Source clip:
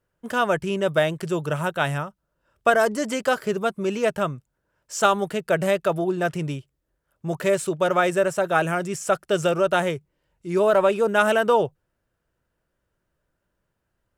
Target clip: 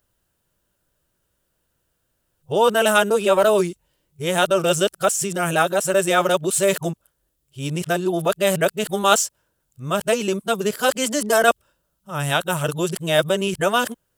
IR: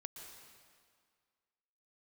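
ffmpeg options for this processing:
-af "areverse,aexciter=amount=1.3:drive=9.4:freq=2.9k,volume=2dB"

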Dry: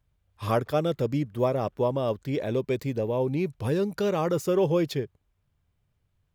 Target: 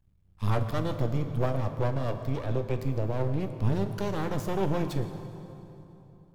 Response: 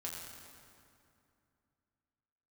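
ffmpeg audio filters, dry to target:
-filter_complex "[0:a]lowshelf=f=160:t=q:w=1.5:g=10,aeval=exprs='max(val(0),0)':c=same,asplit=2[a][b];[1:a]atrim=start_sample=2205,asetrate=33075,aresample=44100[c];[b][c]afir=irnorm=-1:irlink=0,volume=-4dB[d];[a][d]amix=inputs=2:normalize=0,volume=-4.5dB"

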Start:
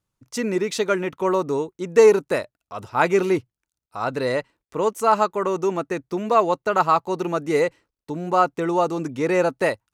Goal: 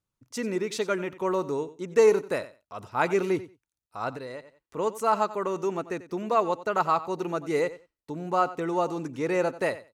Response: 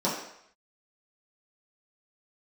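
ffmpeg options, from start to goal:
-filter_complex "[0:a]aecho=1:1:91|182:0.158|0.0254,asettb=1/sr,asplit=3[a][b][c];[a]atrim=end=4.094[d];[b]atrim=start=4.09:end=4.77,asetpts=PTS-STARTPTS,afade=t=in:d=0.004:c=qsin,afade=t=out:st=0.676:d=0.004:c=qsin,acompressor=threshold=-30dB:ratio=6[e];[c]atrim=start=4.766[f];[d][e]acrossfade=d=0.004:c1=hsin:c2=qsin[g];[g][f]acrossfade=d=0.004:c1=qsin:c2=hsin,volume=-6dB"

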